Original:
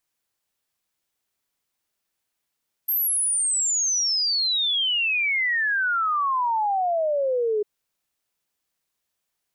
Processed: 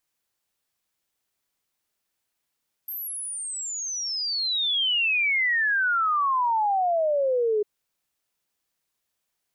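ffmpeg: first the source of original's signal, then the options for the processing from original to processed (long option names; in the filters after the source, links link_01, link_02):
-f lavfi -i "aevalsrc='0.1*clip(min(t,4.75-t)/0.01,0,1)*sin(2*PI*13000*4.75/log(410/13000)*(exp(log(410/13000)*t/4.75)-1))':duration=4.75:sample_rate=44100"
-filter_complex "[0:a]acrossover=split=3800[link_01][link_02];[link_02]acompressor=threshold=-34dB:ratio=4:attack=1:release=60[link_03];[link_01][link_03]amix=inputs=2:normalize=0"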